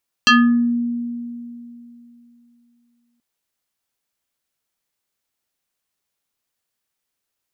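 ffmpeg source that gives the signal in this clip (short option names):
-f lavfi -i "aevalsrc='0.422*pow(10,-3*t/3.03)*sin(2*PI*238*t+3.3*pow(10,-3*t/0.46)*sin(2*PI*6.2*238*t))':d=2.93:s=44100"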